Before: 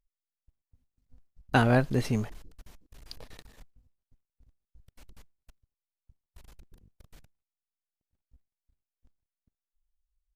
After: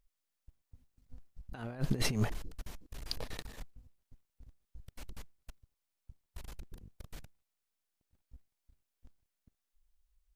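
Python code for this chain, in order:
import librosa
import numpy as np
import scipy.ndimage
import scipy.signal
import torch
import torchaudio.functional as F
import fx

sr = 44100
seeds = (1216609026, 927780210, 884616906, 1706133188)

y = fx.over_compress(x, sr, threshold_db=-31.0, ratio=-0.5)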